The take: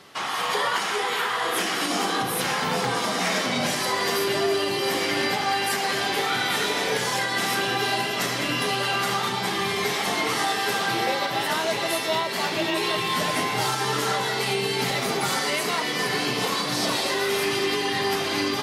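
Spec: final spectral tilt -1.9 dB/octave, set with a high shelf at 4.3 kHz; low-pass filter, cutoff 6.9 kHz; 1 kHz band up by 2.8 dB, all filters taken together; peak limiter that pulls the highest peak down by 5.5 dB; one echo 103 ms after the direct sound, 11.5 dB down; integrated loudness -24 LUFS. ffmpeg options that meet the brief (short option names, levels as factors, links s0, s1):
-af "lowpass=6900,equalizer=f=1000:t=o:g=3,highshelf=f=4300:g=8.5,alimiter=limit=0.158:level=0:latency=1,aecho=1:1:103:0.266,volume=0.944"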